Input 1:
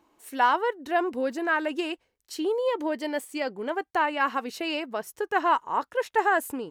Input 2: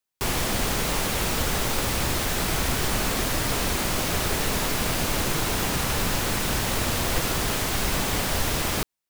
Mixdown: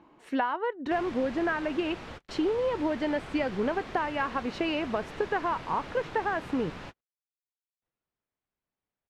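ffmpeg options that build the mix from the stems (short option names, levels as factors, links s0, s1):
-filter_complex "[0:a]acompressor=threshold=0.0251:ratio=12,equalizer=f=160:w=1.8:g=10,acontrast=77,volume=0.944,asplit=2[s0][s1];[1:a]lowshelf=f=72:g=-9,adelay=700,volume=0.2,asplit=3[s2][s3][s4];[s2]atrim=end=7.01,asetpts=PTS-STARTPTS,afade=t=out:st=7.006:d=0.004:c=hsin[s5];[s3]atrim=start=7.01:end=7.82,asetpts=PTS-STARTPTS,volume=0[s6];[s4]atrim=start=7.82,asetpts=PTS-STARTPTS,afade=t=in:d=0.004:c=hsin[s7];[s5][s6][s7]concat=n=3:v=0:a=1[s8];[s1]apad=whole_len=431767[s9];[s8][s9]sidechaingate=range=0.00282:threshold=0.00112:ratio=16:detection=peak[s10];[s0][s10]amix=inputs=2:normalize=0,lowpass=2800"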